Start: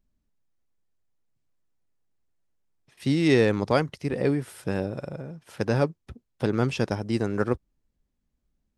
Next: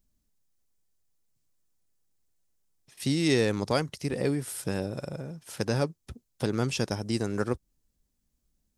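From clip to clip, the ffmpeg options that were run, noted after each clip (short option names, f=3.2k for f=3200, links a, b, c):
-filter_complex "[0:a]bass=f=250:g=1,treble=f=4k:g=12,asplit=2[a][b];[b]acompressor=threshold=-27dB:ratio=6,volume=-0.5dB[c];[a][c]amix=inputs=2:normalize=0,volume=-7dB"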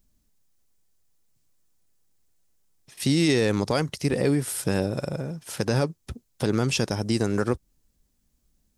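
-af "alimiter=limit=-18dB:level=0:latency=1:release=70,volume=6.5dB"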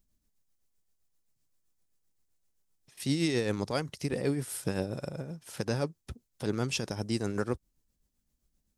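-af "tremolo=f=7.7:d=0.49,volume=-5.5dB"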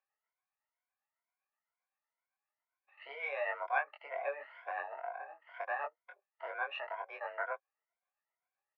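-filter_complex "[0:a]afftfilt=real='re*pow(10,17/40*sin(2*PI*(1.6*log(max(b,1)*sr/1024/100)/log(2)-(2.1)*(pts-256)/sr)))':imag='im*pow(10,17/40*sin(2*PI*(1.6*log(max(b,1)*sr/1024/100)/log(2)-(2.1)*(pts-256)/sr)))':win_size=1024:overlap=0.75,asplit=2[a][b];[b]adelay=22,volume=-3dB[c];[a][c]amix=inputs=2:normalize=0,highpass=f=570:t=q:w=0.5412,highpass=f=570:t=q:w=1.307,lowpass=f=2.2k:t=q:w=0.5176,lowpass=f=2.2k:t=q:w=0.7071,lowpass=f=2.2k:t=q:w=1.932,afreqshift=150,volume=-2.5dB"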